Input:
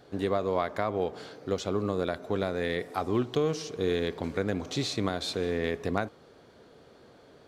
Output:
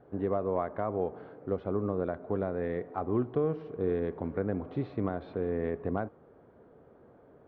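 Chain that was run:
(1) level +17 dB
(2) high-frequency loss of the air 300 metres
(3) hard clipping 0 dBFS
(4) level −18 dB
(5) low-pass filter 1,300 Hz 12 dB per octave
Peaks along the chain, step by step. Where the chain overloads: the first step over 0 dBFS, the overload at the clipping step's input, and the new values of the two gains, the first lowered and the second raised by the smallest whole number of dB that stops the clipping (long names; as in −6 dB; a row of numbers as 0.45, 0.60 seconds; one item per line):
+6.0, +5.0, 0.0, −18.0, −17.5 dBFS
step 1, 5.0 dB
step 1 +12 dB, step 4 −13 dB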